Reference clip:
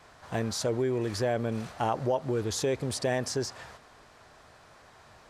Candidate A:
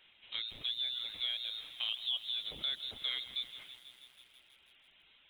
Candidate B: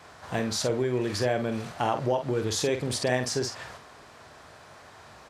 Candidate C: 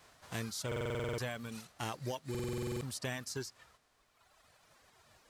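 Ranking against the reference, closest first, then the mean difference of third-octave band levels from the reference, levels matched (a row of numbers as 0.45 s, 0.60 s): B, C, A; 2.5 dB, 6.5 dB, 13.5 dB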